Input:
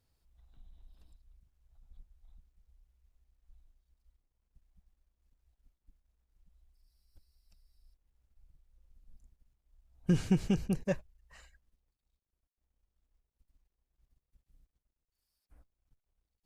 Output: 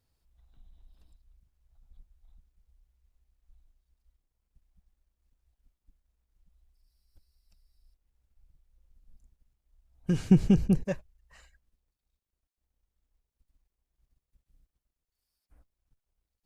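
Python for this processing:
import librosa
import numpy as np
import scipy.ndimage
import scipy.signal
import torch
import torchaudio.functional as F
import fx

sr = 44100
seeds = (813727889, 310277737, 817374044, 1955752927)

y = fx.low_shelf(x, sr, hz=480.0, db=9.5, at=(10.31, 10.86))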